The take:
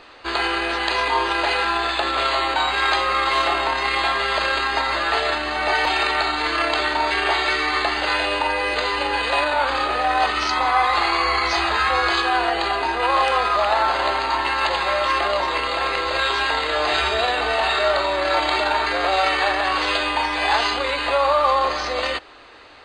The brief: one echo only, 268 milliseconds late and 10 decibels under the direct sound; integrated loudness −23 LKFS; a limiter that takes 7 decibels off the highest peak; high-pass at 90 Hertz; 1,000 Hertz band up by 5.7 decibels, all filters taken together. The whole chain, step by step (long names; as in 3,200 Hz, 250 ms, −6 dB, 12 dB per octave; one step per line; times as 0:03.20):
high-pass filter 90 Hz
parametric band 1,000 Hz +7 dB
brickwall limiter −8 dBFS
single-tap delay 268 ms −10 dB
level −6 dB